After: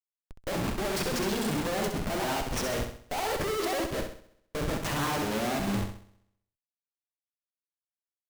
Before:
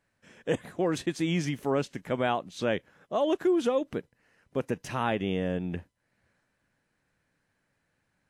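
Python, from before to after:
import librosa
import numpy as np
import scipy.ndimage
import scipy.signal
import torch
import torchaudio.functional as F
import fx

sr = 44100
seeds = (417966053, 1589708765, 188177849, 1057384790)

p1 = fx.pitch_ramps(x, sr, semitones=7.5, every_ms=373)
p2 = fx.hum_notches(p1, sr, base_hz=60, count=7)
p3 = fx.schmitt(p2, sr, flips_db=-43.0)
p4 = p3 + fx.room_flutter(p3, sr, wall_m=11.2, rt60_s=0.77, dry=0)
p5 = fx.upward_expand(p4, sr, threshold_db=-48.0, expansion=1.5)
y = p5 * 10.0 ** (3.0 / 20.0)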